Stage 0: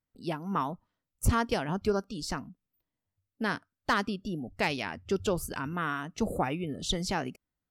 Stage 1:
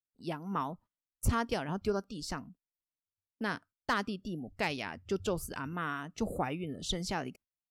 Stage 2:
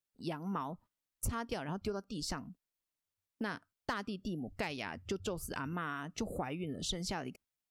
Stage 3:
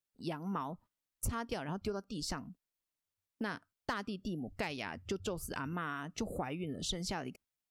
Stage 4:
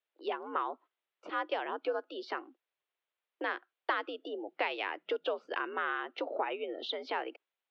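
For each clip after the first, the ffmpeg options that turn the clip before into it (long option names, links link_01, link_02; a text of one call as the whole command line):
ffmpeg -i in.wav -af "agate=range=-17dB:threshold=-51dB:ratio=16:detection=peak,volume=-4dB" out.wav
ffmpeg -i in.wav -af "acompressor=threshold=-39dB:ratio=4,volume=3.5dB" out.wav
ffmpeg -i in.wav -af anull out.wav
ffmpeg -i in.wav -af "highpass=frequency=310:width_type=q:width=0.5412,highpass=frequency=310:width_type=q:width=1.307,lowpass=frequency=3500:width_type=q:width=0.5176,lowpass=frequency=3500:width_type=q:width=0.7071,lowpass=frequency=3500:width_type=q:width=1.932,afreqshift=74,volume=6dB" out.wav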